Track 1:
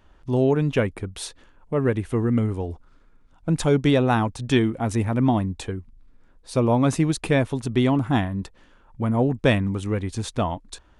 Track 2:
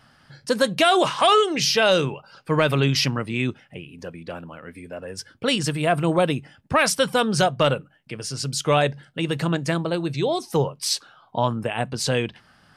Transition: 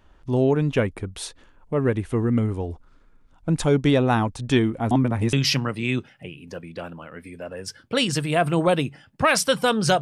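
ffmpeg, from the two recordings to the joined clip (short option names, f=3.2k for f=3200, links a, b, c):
-filter_complex "[0:a]apad=whole_dur=10.01,atrim=end=10.01,asplit=2[a][b];[a]atrim=end=4.912[c];[b]atrim=start=4.908:end=5.332,asetpts=PTS-STARTPTS,areverse[d];[1:a]atrim=start=2.838:end=7.52[e];[c][d]acrossfade=d=0.004:c1=hsin:c2=hsin[f];[f][e]acrossfade=d=0.004:c1=hsin:c2=hsin"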